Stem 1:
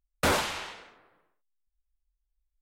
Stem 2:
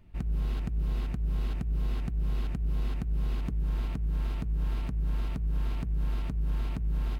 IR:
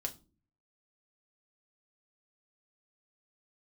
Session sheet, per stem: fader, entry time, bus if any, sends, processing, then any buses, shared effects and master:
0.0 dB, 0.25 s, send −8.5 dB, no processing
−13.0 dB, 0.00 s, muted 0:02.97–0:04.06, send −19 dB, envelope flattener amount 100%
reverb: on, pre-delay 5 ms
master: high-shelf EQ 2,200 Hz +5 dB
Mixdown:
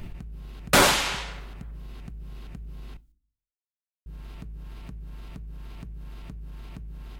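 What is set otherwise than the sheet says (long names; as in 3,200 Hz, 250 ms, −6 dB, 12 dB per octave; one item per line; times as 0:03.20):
stem 1: entry 0.25 s → 0.50 s
reverb return +9.5 dB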